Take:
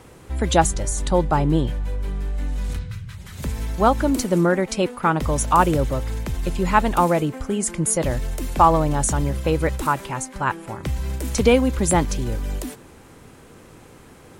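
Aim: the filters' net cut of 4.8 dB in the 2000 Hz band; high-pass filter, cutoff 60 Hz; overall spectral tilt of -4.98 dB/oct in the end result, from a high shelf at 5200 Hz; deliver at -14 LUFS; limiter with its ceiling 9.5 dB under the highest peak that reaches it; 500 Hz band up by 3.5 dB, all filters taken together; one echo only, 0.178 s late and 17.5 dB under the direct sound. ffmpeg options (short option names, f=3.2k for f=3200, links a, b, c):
-af "highpass=60,equalizer=f=500:t=o:g=4.5,equalizer=f=2k:t=o:g=-8.5,highshelf=f=5.2k:g=9,alimiter=limit=-10.5dB:level=0:latency=1,aecho=1:1:178:0.133,volume=8.5dB"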